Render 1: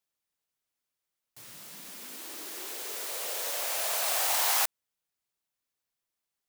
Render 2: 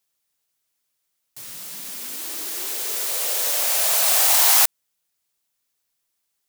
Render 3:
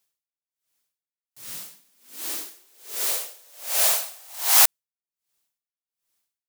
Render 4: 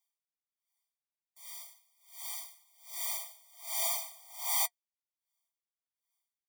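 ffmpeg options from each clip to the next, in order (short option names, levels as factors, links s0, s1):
-af "highshelf=f=3400:g=7,volume=1.88"
-af "aeval=exprs='val(0)*pow(10,-32*(0.5-0.5*cos(2*PI*1.3*n/s))/20)':c=same,volume=1.19"
-af "flanger=delay=4.8:depth=4.9:regen=-57:speed=1.5:shape=sinusoidal,asoftclip=type=tanh:threshold=0.0944,afftfilt=real='re*eq(mod(floor(b*sr/1024/620),2),1)':imag='im*eq(mod(floor(b*sr/1024/620),2),1)':win_size=1024:overlap=0.75,volume=0.794"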